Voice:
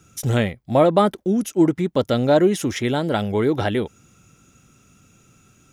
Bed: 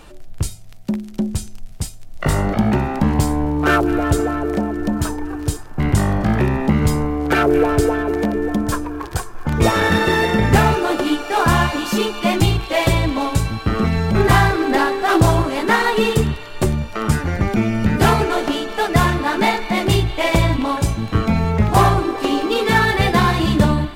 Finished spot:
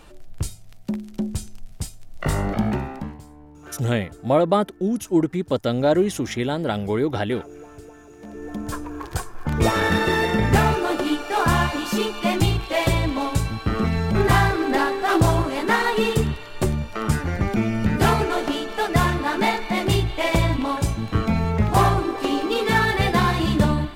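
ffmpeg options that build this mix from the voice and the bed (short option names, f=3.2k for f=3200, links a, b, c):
-filter_complex "[0:a]adelay=3550,volume=-2.5dB[a];[1:a]volume=17.5dB,afade=t=out:st=2.61:d=0.58:silence=0.0841395,afade=t=in:st=8.18:d=0.98:silence=0.0749894[b];[a][b]amix=inputs=2:normalize=0"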